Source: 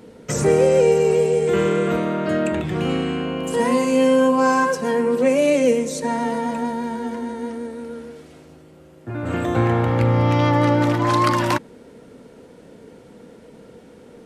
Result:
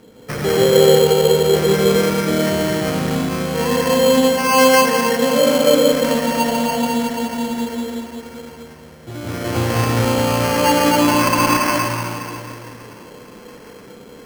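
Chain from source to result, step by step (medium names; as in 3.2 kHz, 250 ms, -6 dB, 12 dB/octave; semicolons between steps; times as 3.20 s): resonant high shelf 6.9 kHz -8 dB, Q 3; feedback echo behind a high-pass 992 ms, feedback 64%, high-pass 2.1 kHz, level -18 dB; reverberation RT60 2.7 s, pre-delay 113 ms, DRR -5.5 dB; sample-and-hold 12×; trim -2.5 dB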